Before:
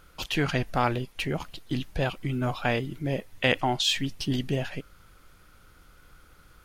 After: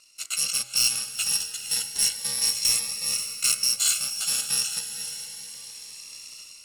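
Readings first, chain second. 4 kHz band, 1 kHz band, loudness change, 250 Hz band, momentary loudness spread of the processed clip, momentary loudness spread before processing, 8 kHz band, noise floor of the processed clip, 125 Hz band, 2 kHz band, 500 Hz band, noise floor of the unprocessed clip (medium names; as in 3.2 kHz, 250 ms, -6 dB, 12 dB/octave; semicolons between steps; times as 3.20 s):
+6.5 dB, -14.5 dB, +5.0 dB, -22.5 dB, 17 LU, 8 LU, +20.5 dB, -46 dBFS, -22.0 dB, -3.5 dB, -20.5 dB, -57 dBFS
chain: bit-reversed sample order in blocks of 128 samples; frequency weighting ITU-R 468; level rider gain up to 13.5 dB; hard clipper -9.5 dBFS, distortion -14 dB; de-hum 63.05 Hz, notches 37; on a send: echo that smears into a reverb 484 ms, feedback 43%, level -8 dB; on the sum: Shepard-style phaser rising 0.31 Hz; trim -6 dB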